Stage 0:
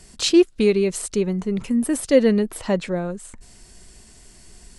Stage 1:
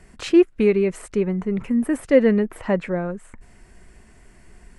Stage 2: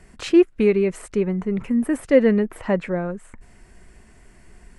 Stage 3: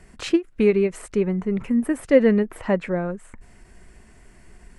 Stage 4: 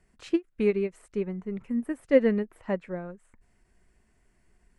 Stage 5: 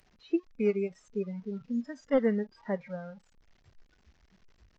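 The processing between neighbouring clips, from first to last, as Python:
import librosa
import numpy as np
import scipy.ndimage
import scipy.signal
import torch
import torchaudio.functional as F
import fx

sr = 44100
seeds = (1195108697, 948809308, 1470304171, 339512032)

y1 = fx.high_shelf_res(x, sr, hz=2900.0, db=-11.5, q=1.5)
y2 = y1
y3 = fx.end_taper(y2, sr, db_per_s=360.0)
y4 = fx.upward_expand(y3, sr, threshold_db=-35.0, expansion=1.5)
y4 = y4 * librosa.db_to_amplitude(-4.0)
y5 = fx.delta_mod(y4, sr, bps=32000, step_db=-37.0)
y5 = fx.noise_reduce_blind(y5, sr, reduce_db=20)
y5 = y5 * librosa.db_to_amplitude(-3.0)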